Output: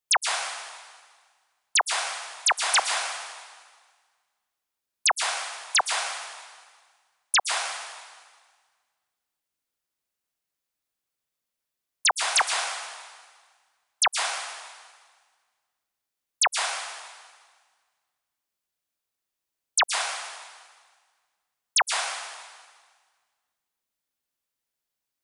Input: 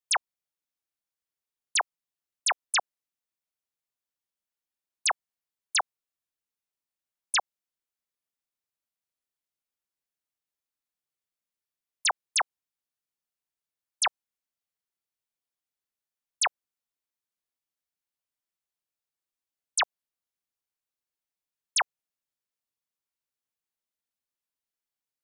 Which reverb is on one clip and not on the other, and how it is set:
dense smooth reverb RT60 1.6 s, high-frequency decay 0.95×, pre-delay 105 ms, DRR 2.5 dB
level +4 dB

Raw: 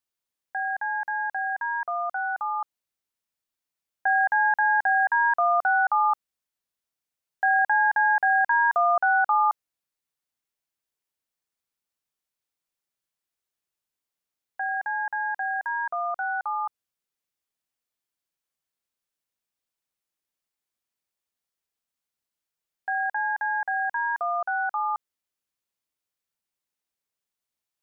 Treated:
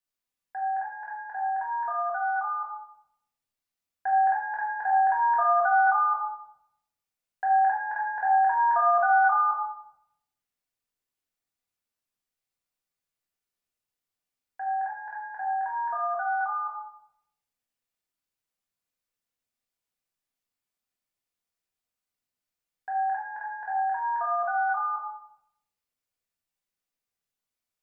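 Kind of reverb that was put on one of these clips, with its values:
rectangular room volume 220 cubic metres, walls mixed, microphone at 1.9 metres
level −7 dB

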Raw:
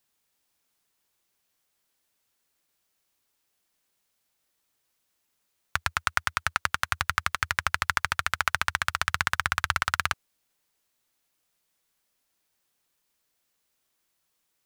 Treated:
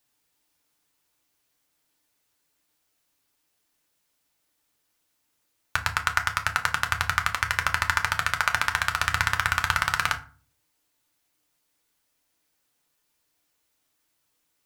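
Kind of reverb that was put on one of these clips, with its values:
feedback delay network reverb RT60 0.38 s, low-frequency decay 1.55×, high-frequency decay 0.65×, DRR 4 dB
level +1 dB

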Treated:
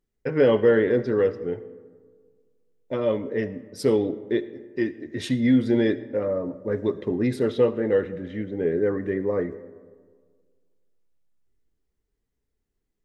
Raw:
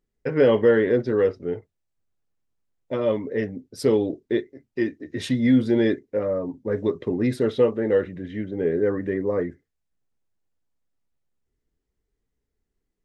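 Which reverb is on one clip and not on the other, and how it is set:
comb and all-pass reverb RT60 1.7 s, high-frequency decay 0.4×, pre-delay 30 ms, DRR 15.5 dB
level −1 dB

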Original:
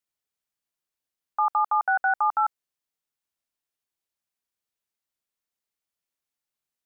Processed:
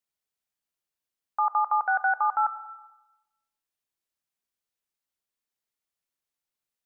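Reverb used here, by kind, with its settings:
comb and all-pass reverb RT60 1 s, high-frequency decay 0.8×, pre-delay 50 ms, DRR 12.5 dB
level −1.5 dB

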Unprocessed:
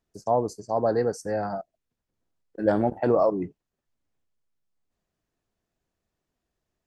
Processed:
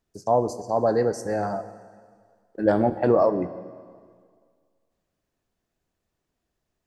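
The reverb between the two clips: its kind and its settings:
dense smooth reverb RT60 1.9 s, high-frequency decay 0.95×, DRR 11.5 dB
level +2 dB

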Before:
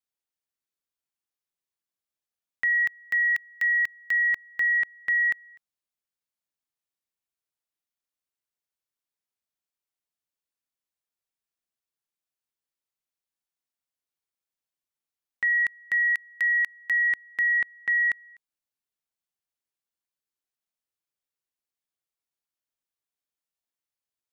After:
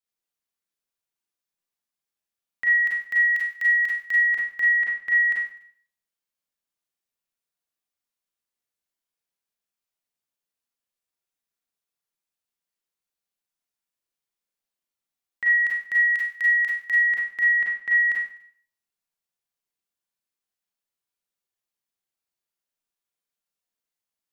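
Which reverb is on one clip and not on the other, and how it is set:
four-comb reverb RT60 0.5 s, combs from 32 ms, DRR −3.5 dB
level −3 dB

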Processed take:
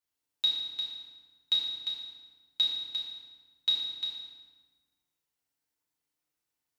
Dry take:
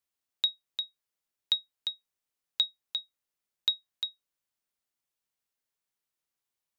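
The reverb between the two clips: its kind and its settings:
feedback delay network reverb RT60 1.4 s, low-frequency decay 1.35×, high-frequency decay 0.75×, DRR −7.5 dB
level −6 dB

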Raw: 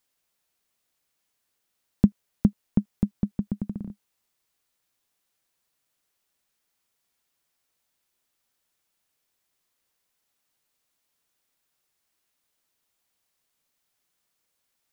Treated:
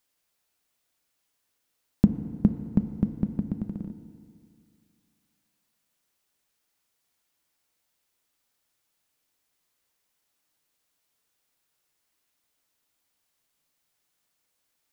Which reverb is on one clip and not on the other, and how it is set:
feedback delay network reverb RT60 2.3 s, low-frequency decay 1×, high-frequency decay 0.9×, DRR 8 dB

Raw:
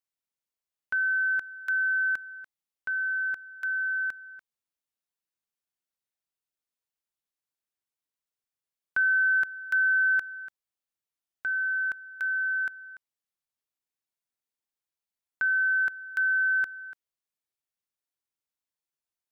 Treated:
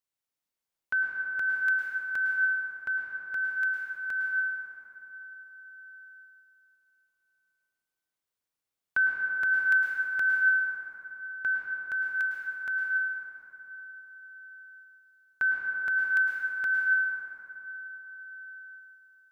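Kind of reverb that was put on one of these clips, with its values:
dense smooth reverb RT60 3.8 s, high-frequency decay 0.4×, pre-delay 95 ms, DRR −1.5 dB

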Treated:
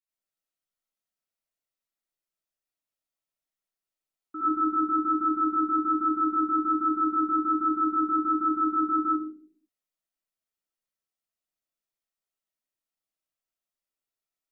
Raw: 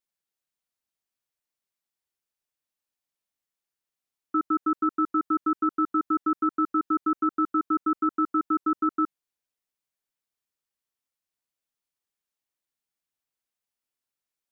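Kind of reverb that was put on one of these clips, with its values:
comb and all-pass reverb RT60 0.52 s, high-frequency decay 0.3×, pre-delay 45 ms, DRR −9 dB
level −12.5 dB

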